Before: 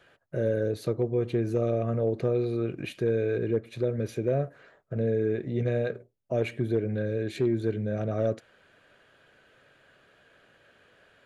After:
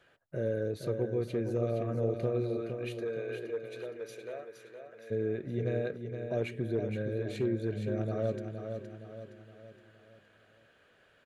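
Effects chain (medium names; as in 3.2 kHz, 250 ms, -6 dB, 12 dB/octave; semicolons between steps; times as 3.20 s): 2.56–5.10 s: high-pass 390 Hz -> 1.2 kHz 12 dB/octave; feedback delay 467 ms, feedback 46%, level -7 dB; trim -5.5 dB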